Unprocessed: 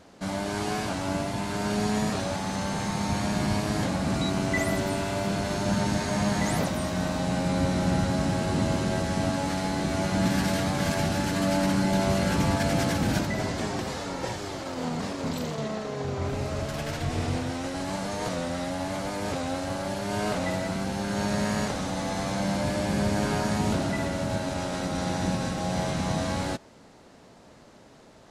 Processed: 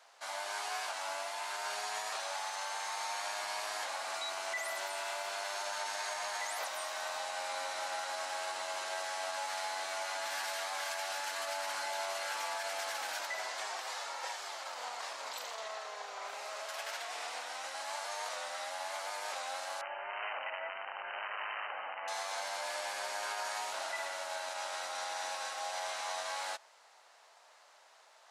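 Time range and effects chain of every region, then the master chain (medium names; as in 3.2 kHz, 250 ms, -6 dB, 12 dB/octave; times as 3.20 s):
19.81–22.08 s: integer overflow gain 21 dB + brick-wall FIR low-pass 3.1 kHz
whole clip: high-pass 740 Hz 24 dB/octave; peak limiter -25 dBFS; trim -3.5 dB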